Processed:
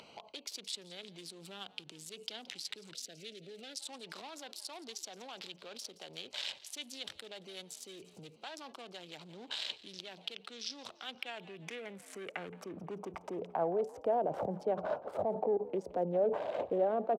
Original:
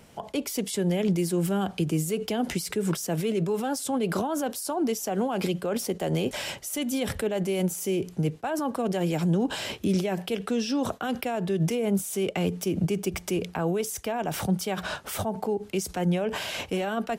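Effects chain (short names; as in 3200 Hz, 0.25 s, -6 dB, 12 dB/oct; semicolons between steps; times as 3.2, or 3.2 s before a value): Wiener smoothing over 25 samples; limiter -26 dBFS, peak gain reduction 10 dB; band-pass sweep 3800 Hz -> 560 Hz, 10.9–13.98; frequency-shifting echo 0.171 s, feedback 42%, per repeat +62 Hz, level -19.5 dB; upward compressor, threshold -51 dBFS; 2.93–3.8 Butterworth band-stop 1000 Hz, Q 1.2; gain +8 dB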